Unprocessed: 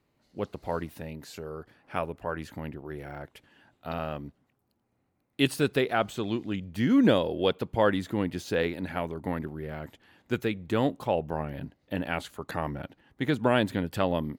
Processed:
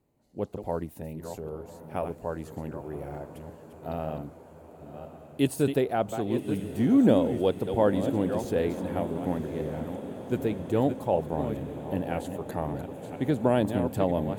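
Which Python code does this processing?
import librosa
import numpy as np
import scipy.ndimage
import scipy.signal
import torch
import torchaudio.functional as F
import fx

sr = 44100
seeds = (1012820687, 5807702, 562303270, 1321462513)

y = fx.reverse_delay(x, sr, ms=506, wet_db=-8.5)
y = fx.band_shelf(y, sr, hz=2500.0, db=-10.0, octaves=2.6)
y = fx.echo_diffused(y, sr, ms=1079, feedback_pct=72, wet_db=-13.5)
y = F.gain(torch.from_numpy(y), 1.0).numpy()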